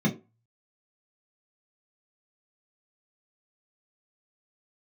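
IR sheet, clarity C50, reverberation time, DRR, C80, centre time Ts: 12.5 dB, 0.30 s, −3.0 dB, 18.0 dB, 16 ms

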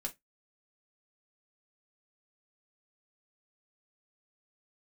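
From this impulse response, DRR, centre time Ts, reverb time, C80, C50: 0.0 dB, 7 ms, non-exponential decay, 32.5 dB, 20.0 dB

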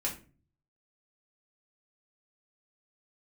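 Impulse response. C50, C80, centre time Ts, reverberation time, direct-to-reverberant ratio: 10.0 dB, 15.5 dB, 19 ms, 0.35 s, −3.0 dB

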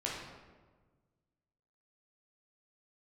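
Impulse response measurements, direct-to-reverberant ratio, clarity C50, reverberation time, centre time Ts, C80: −4.5 dB, 0.5 dB, 1.4 s, 71 ms, 3.5 dB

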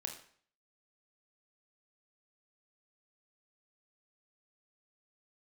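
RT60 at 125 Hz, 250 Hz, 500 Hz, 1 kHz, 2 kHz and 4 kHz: 0.55, 0.50, 0.55, 0.55, 0.55, 0.50 seconds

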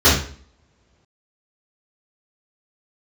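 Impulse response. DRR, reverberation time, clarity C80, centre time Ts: −12.5 dB, 0.50 s, 9.0 dB, 40 ms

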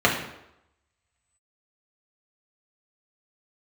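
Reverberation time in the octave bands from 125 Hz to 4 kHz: 0.70, 0.75, 0.85, 0.85, 0.75, 0.65 seconds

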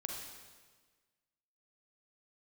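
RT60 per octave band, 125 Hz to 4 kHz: 1.5, 1.6, 1.5, 1.4, 1.4, 1.3 seconds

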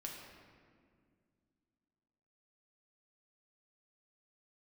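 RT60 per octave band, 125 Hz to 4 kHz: 2.9, 3.1, 2.3, 1.8, 1.7, 1.2 seconds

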